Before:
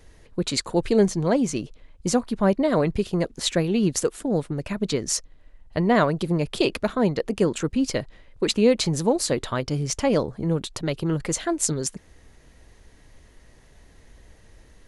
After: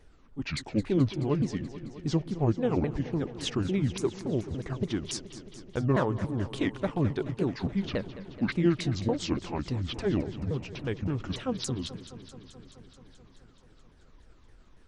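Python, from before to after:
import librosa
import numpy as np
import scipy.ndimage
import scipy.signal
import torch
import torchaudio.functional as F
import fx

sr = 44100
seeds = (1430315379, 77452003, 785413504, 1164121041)

y = fx.pitch_ramps(x, sr, semitones=-11.5, every_ms=284)
y = fx.high_shelf(y, sr, hz=3600.0, db=-7.5)
y = fx.echo_warbled(y, sr, ms=215, feedback_pct=75, rate_hz=2.8, cents=63, wet_db=-14.5)
y = y * 10.0 ** (-5.0 / 20.0)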